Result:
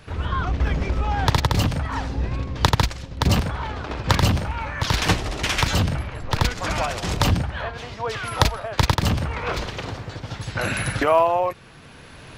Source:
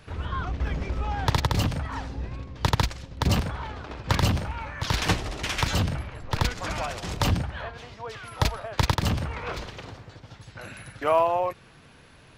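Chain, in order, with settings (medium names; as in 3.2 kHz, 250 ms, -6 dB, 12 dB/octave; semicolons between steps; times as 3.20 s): recorder AGC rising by 8 dB/s; trim +4 dB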